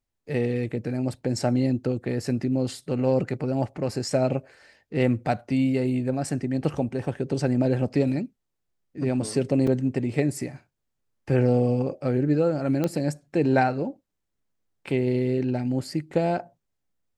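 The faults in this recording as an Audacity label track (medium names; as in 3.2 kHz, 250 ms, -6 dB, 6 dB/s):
9.670000	9.670000	dropout 4 ms
12.840000	12.840000	pop -13 dBFS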